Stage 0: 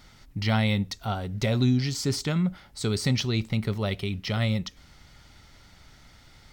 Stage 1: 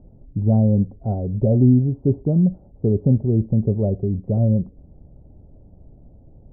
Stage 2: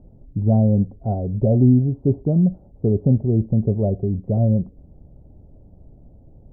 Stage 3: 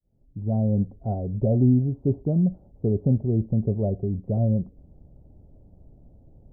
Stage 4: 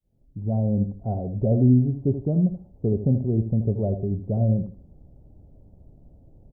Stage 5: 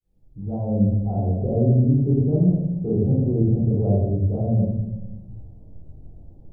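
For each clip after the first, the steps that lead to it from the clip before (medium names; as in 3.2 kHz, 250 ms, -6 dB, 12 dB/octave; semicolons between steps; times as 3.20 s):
steep low-pass 620 Hz 36 dB/octave; trim +8.5 dB
dynamic bell 690 Hz, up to +5 dB, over -44 dBFS, Q 5.8
fade-in on the opening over 0.81 s; trim -4.5 dB
feedback delay 80 ms, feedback 22%, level -10 dB
simulated room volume 370 m³, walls mixed, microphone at 4 m; trim -8 dB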